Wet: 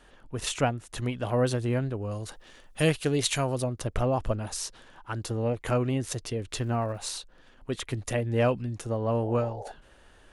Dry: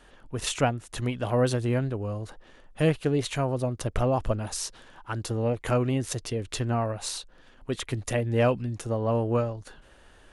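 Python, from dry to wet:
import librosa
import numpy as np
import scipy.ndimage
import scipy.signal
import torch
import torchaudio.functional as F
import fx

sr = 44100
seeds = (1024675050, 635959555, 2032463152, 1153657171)

y = fx.high_shelf(x, sr, hz=2600.0, db=12.0, at=(2.11, 3.64))
y = fx.dmg_crackle(y, sr, seeds[0], per_s=fx.line((6.59, 560.0), (7.15, 220.0)), level_db=-51.0, at=(6.59, 7.15), fade=0.02)
y = fx.spec_paint(y, sr, seeds[1], shape='noise', start_s=9.22, length_s=0.5, low_hz=390.0, high_hz=920.0, level_db=-39.0)
y = F.gain(torch.from_numpy(y), -1.5).numpy()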